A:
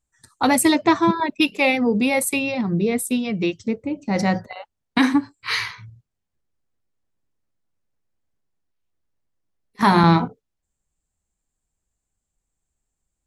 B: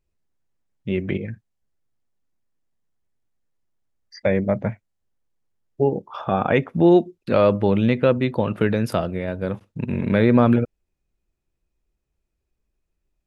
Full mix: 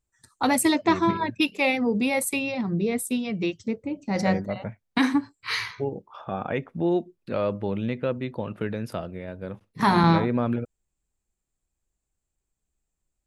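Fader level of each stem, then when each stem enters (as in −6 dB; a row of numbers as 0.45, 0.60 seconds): −4.5, −9.5 decibels; 0.00, 0.00 seconds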